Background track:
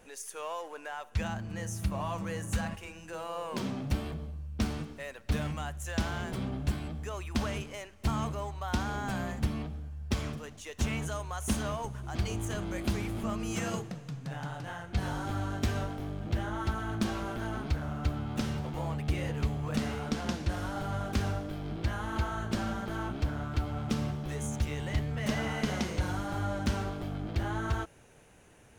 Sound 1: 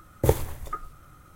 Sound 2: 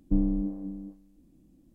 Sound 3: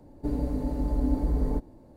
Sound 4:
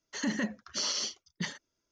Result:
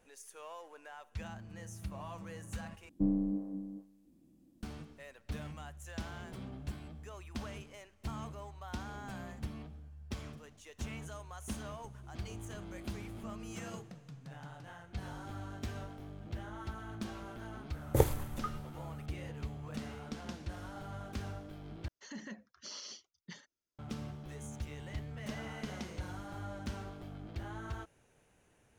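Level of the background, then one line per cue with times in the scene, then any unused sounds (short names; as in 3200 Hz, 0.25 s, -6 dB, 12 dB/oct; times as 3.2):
background track -10.5 dB
2.89 replace with 2 -3 dB + HPF 130 Hz 6 dB/oct
17.71 add 1 -5.5 dB
21.88 replace with 4 -14.5 dB
not used: 3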